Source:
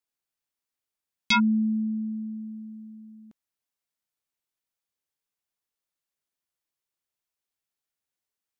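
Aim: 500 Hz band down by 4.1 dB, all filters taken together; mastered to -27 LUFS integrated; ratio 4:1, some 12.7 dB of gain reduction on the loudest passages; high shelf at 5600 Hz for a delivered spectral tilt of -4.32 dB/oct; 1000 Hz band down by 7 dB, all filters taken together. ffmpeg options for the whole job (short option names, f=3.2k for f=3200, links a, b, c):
-af "equalizer=f=500:t=o:g=-7.5,equalizer=f=1k:t=o:g=-7.5,highshelf=f=5.6k:g=-6.5,acompressor=threshold=-37dB:ratio=4,volume=12dB"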